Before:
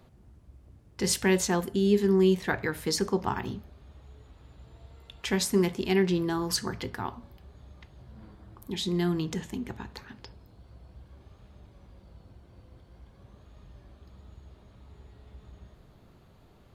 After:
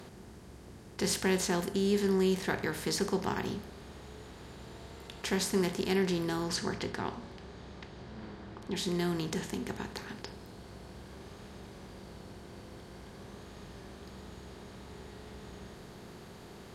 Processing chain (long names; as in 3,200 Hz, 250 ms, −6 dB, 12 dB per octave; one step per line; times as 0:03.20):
compressor on every frequency bin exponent 0.6
0:06.43–0:08.74: low-pass filter 8,400 Hz → 4,200 Hz 12 dB per octave
level −7 dB